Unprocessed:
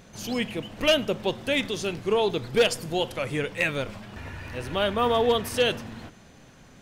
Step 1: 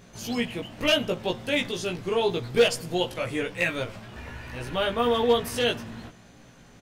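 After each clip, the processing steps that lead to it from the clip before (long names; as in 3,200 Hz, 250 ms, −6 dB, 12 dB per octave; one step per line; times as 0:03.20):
double-tracking delay 17 ms −2 dB
level −2.5 dB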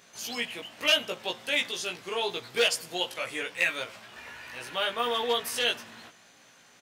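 high-pass filter 1,400 Hz 6 dB per octave
level +2 dB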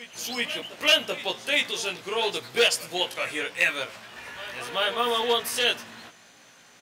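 backwards echo 384 ms −15 dB
level +3.5 dB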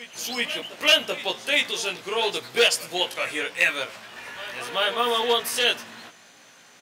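high-pass filter 130 Hz 6 dB per octave
level +2 dB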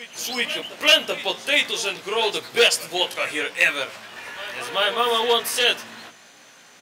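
mains-hum notches 60/120/180/240 Hz
level +2.5 dB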